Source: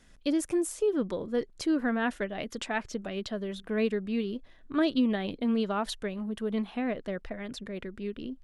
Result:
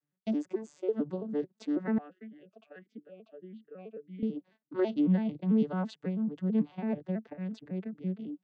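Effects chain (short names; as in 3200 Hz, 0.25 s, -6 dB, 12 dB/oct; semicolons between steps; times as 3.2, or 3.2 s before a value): arpeggiated vocoder major triad, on D3, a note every 0.11 s; gate -58 dBFS, range -21 dB; 1.98–4.23 vowel sweep a-i 1.6 Hz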